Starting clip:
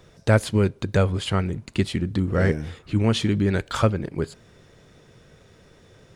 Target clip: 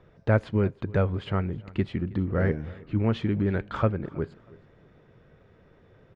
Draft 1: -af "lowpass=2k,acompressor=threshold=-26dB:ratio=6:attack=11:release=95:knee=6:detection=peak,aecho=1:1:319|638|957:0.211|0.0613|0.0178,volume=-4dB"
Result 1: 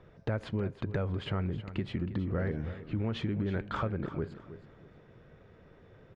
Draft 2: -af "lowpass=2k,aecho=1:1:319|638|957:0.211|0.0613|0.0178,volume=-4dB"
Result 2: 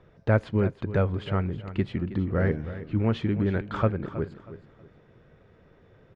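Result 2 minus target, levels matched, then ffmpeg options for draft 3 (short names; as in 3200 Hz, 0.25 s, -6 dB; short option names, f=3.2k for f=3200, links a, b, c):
echo-to-direct +8.5 dB
-af "lowpass=2k,aecho=1:1:319|638:0.0794|0.023,volume=-4dB"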